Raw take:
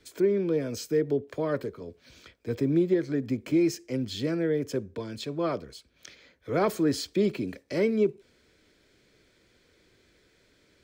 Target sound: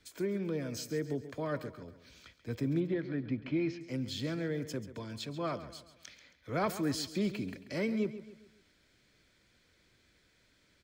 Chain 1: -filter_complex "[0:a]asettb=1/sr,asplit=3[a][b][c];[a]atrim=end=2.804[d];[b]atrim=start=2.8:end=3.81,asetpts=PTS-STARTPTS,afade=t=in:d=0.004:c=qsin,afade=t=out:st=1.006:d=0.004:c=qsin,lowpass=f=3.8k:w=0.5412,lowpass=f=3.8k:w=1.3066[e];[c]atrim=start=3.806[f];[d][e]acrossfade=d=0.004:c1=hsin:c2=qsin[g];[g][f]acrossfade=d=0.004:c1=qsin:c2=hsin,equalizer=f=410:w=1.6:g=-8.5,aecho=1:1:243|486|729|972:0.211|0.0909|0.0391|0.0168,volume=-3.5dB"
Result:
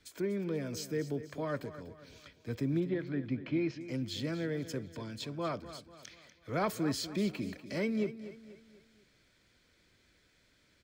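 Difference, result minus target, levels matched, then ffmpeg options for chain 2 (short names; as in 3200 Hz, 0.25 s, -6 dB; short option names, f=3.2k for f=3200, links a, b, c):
echo 0.107 s late
-filter_complex "[0:a]asettb=1/sr,asplit=3[a][b][c];[a]atrim=end=2.804[d];[b]atrim=start=2.8:end=3.81,asetpts=PTS-STARTPTS,afade=t=in:d=0.004:c=qsin,afade=t=out:st=1.006:d=0.004:c=qsin,lowpass=f=3.8k:w=0.5412,lowpass=f=3.8k:w=1.3066[e];[c]atrim=start=3.806[f];[d][e]acrossfade=d=0.004:c1=hsin:c2=qsin[g];[g][f]acrossfade=d=0.004:c1=qsin:c2=hsin,equalizer=f=410:w=1.6:g=-8.5,aecho=1:1:136|272|408|544:0.211|0.0909|0.0391|0.0168,volume=-3.5dB"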